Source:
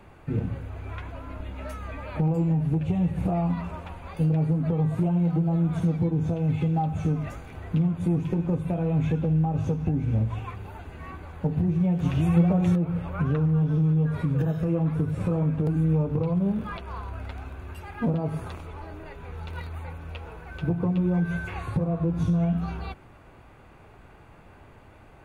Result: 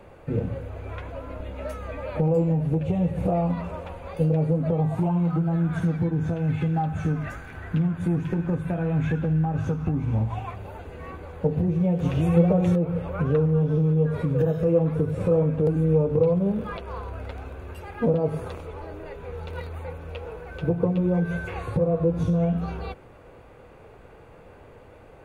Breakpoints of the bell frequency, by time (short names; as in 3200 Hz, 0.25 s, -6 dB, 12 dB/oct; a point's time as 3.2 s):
bell +12 dB 0.5 oct
4.61 s 520 Hz
5.53 s 1600 Hz
9.6 s 1600 Hz
10.81 s 490 Hz